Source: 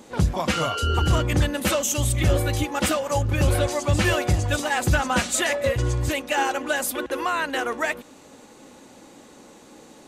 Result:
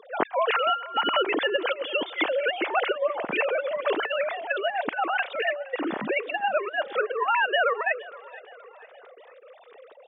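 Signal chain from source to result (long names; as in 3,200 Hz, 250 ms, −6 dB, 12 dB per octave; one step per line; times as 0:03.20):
three sine waves on the formant tracks
compressor whose output falls as the input rises −24 dBFS, ratio −0.5
high-pass filter 280 Hz 12 dB per octave
on a send: repeating echo 468 ms, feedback 46%, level −20 dB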